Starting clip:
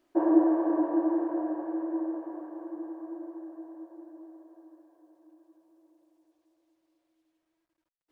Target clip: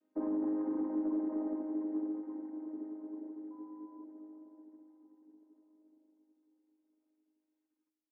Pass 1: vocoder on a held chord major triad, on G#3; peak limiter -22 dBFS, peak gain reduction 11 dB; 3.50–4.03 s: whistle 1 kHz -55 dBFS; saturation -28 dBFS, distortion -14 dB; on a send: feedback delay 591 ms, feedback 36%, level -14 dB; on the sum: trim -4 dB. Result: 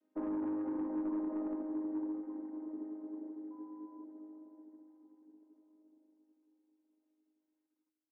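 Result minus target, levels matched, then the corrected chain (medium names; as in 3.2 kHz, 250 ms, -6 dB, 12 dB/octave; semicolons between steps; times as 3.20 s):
saturation: distortion +10 dB
vocoder on a held chord major triad, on G#3; peak limiter -22 dBFS, peak gain reduction 11 dB; 3.50–4.03 s: whistle 1 kHz -55 dBFS; saturation -21 dBFS, distortion -24 dB; on a send: feedback delay 591 ms, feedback 36%, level -14 dB; on the sum: trim -4 dB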